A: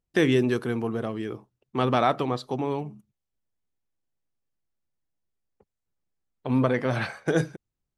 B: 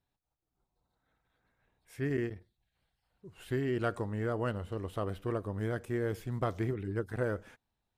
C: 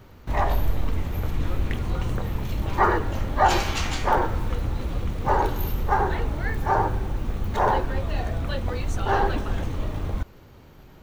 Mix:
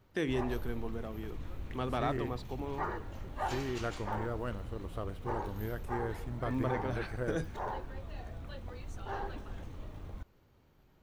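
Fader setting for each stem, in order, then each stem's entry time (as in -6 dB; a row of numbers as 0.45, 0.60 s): -12.0, -5.0, -17.0 dB; 0.00, 0.00, 0.00 s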